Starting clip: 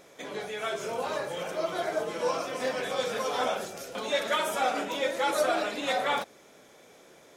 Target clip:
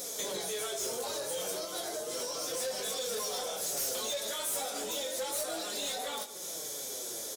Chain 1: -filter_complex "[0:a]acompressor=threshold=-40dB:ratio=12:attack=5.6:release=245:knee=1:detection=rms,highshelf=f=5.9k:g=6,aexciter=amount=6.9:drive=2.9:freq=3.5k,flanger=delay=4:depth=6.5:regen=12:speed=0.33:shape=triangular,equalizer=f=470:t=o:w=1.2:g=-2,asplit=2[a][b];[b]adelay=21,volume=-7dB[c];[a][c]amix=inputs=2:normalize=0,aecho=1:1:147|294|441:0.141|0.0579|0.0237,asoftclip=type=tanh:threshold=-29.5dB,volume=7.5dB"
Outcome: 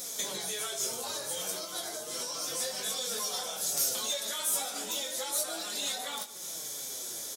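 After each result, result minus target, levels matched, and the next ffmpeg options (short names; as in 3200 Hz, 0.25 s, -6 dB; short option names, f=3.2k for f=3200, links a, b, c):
500 Hz band -6.5 dB; soft clip: distortion -8 dB
-filter_complex "[0:a]acompressor=threshold=-40dB:ratio=12:attack=5.6:release=245:knee=1:detection=rms,highshelf=f=5.9k:g=6,aexciter=amount=6.9:drive=2.9:freq=3.5k,flanger=delay=4:depth=6.5:regen=12:speed=0.33:shape=triangular,equalizer=f=470:t=o:w=1.2:g=6.5,asplit=2[a][b];[b]adelay=21,volume=-7dB[c];[a][c]amix=inputs=2:normalize=0,aecho=1:1:147|294|441:0.141|0.0579|0.0237,asoftclip=type=tanh:threshold=-29.5dB,volume=7.5dB"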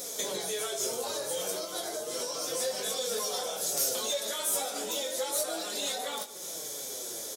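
soft clip: distortion -8 dB
-filter_complex "[0:a]acompressor=threshold=-40dB:ratio=12:attack=5.6:release=245:knee=1:detection=rms,highshelf=f=5.9k:g=6,aexciter=amount=6.9:drive=2.9:freq=3.5k,flanger=delay=4:depth=6.5:regen=12:speed=0.33:shape=triangular,equalizer=f=470:t=o:w=1.2:g=6.5,asplit=2[a][b];[b]adelay=21,volume=-7dB[c];[a][c]amix=inputs=2:normalize=0,aecho=1:1:147|294|441:0.141|0.0579|0.0237,asoftclip=type=tanh:threshold=-38dB,volume=7.5dB"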